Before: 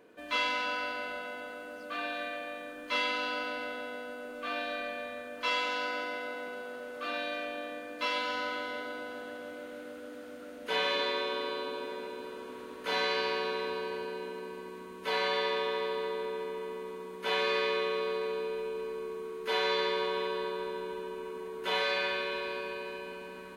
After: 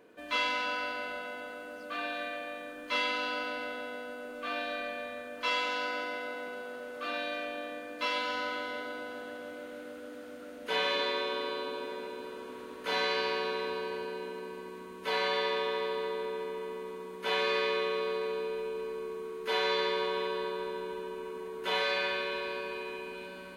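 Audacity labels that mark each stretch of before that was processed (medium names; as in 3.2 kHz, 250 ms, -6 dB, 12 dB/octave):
22.280000	22.830000	echo throw 430 ms, feedback 75%, level -11.5 dB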